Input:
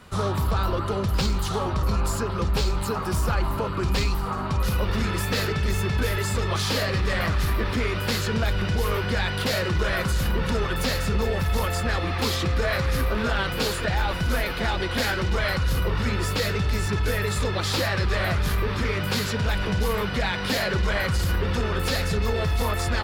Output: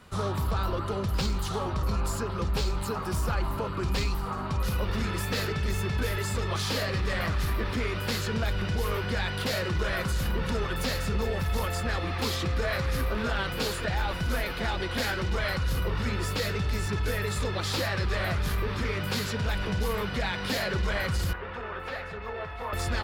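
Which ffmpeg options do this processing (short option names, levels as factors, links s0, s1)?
-filter_complex "[0:a]asettb=1/sr,asplit=3[s0][s1][s2];[s0]atrim=end=21.334[s3];[s1]atrim=start=21.33:end=22.73,asetpts=PTS-STARTPTS,afade=t=in:d=0.004:c=qsin,afade=t=out:st=1.396:d=0.004:c=qsin,acrossover=split=490 2600:gain=0.2 1 0.0708[s4][s5][s6];[s4][s5][s6]amix=inputs=3:normalize=0[s7];[s2]atrim=start=22.726[s8];[s3][s7]acrossfade=d=0.004:c1=hsin:c2=qsin[s9];[s9][s8]acrossfade=d=0.004:c1=qsin:c2=hsin,volume=0.596"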